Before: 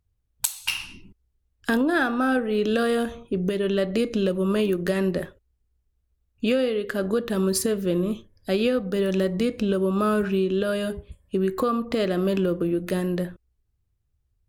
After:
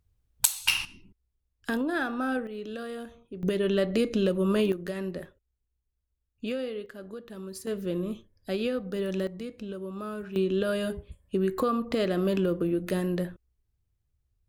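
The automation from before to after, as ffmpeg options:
-af "asetnsamples=n=441:p=0,asendcmd='0.85 volume volume -7dB;2.47 volume volume -14.5dB;3.43 volume volume -2dB;4.72 volume volume -10dB;6.86 volume volume -17dB;7.67 volume volume -7dB;9.27 volume volume -14dB;10.36 volume volume -3dB',volume=2dB"

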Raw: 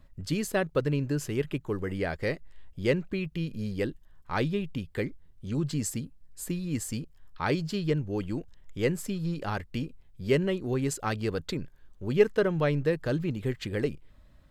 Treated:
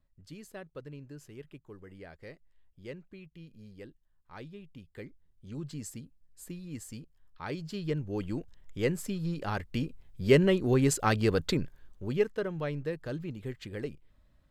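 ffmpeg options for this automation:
-af "volume=4dB,afade=t=in:st=4.56:d=1.03:silence=0.421697,afade=t=in:st=7.49:d=0.79:silence=0.398107,afade=t=in:st=9.42:d=1.07:silence=0.501187,afade=t=out:st=11.55:d=0.73:silence=0.251189"

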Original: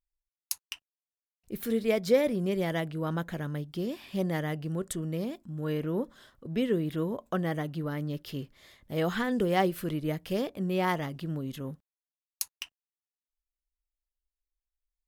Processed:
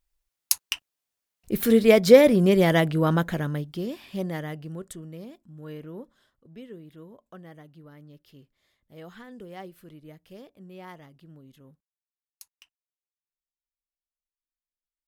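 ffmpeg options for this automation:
-af "volume=10.5dB,afade=t=out:st=2.97:d=0.78:silence=0.375837,afade=t=out:st=3.75:d=1.36:silence=0.316228,afade=t=out:st=5.75:d=0.9:silence=0.421697"

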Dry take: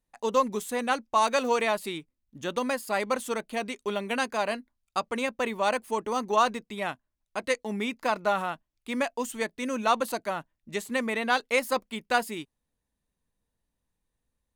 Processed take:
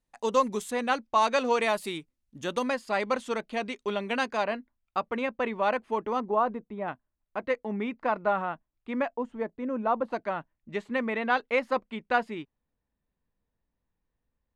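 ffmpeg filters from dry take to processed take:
-af "asetnsamples=n=441:p=0,asendcmd='0.71 lowpass f 5300;1.62 lowpass f 12000;2.63 lowpass f 4900;4.44 lowpass f 2500;6.2 lowpass f 1000;6.88 lowpass f 1800;9.13 lowpass f 1000;10.12 lowpass f 2400',lowpass=10k"

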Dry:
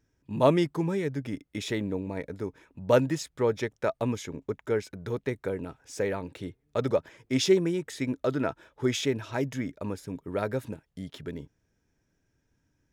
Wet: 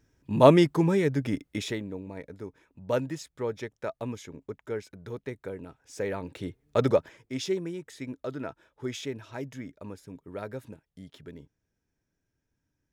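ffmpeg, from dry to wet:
-af "volume=15.5dB,afade=t=out:st=1.42:d=0.41:silence=0.281838,afade=t=in:st=5.83:d=1.01:silence=0.298538,afade=t=out:st=6.84:d=0.49:silence=0.251189"

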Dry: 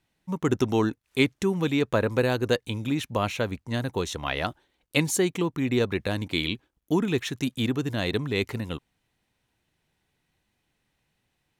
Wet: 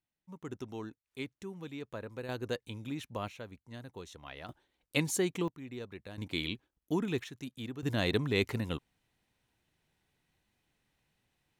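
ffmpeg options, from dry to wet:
-af "asetnsamples=n=441:p=0,asendcmd='2.29 volume volume -12dB;3.28 volume volume -18dB;4.49 volume volume -7dB;5.48 volume volume -19dB;6.18 volume volume -8dB;7.24 volume volume -15dB;7.83 volume volume -3dB',volume=-18.5dB"

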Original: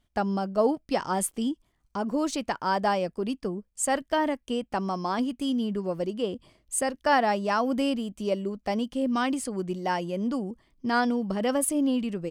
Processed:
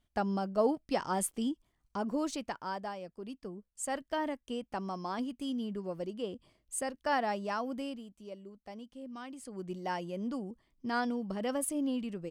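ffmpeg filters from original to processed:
-af "volume=13.5dB,afade=t=out:st=2.05:d=0.89:silence=0.266073,afade=t=in:st=2.94:d=1.26:silence=0.398107,afade=t=out:st=7.43:d=0.74:silence=0.316228,afade=t=in:st=9.34:d=0.4:silence=0.298538"

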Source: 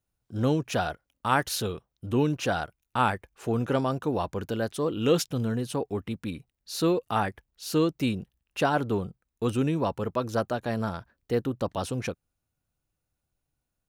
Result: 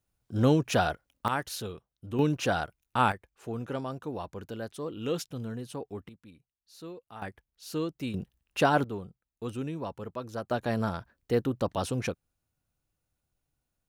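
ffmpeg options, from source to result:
-af "asetnsamples=n=441:p=0,asendcmd='1.28 volume volume -7dB;2.19 volume volume -0.5dB;3.12 volume volume -8.5dB;6.09 volume volume -19dB;7.22 volume volume -8dB;8.14 volume volume 1dB;8.84 volume volume -9dB;10.51 volume volume 0dB',volume=2dB"

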